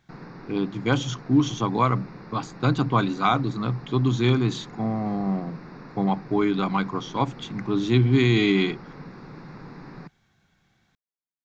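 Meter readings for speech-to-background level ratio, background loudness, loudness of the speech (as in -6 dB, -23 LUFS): 18.5 dB, -42.5 LUFS, -24.0 LUFS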